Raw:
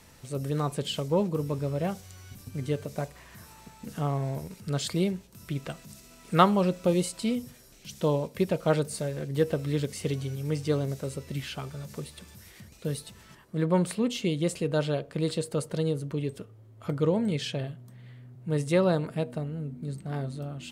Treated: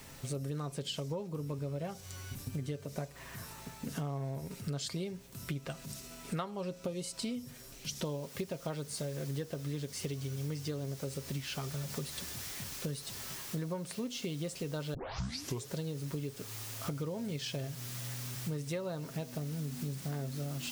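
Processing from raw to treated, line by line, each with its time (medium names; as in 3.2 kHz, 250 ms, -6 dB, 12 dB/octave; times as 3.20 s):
8.05 s: noise floor step -63 dB -48 dB
14.94 s: tape start 0.78 s
whole clip: dynamic bell 5.5 kHz, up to +6 dB, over -55 dBFS, Q 1.7; comb 7.4 ms, depth 35%; compression 12:1, threshold -37 dBFS; trim +2.5 dB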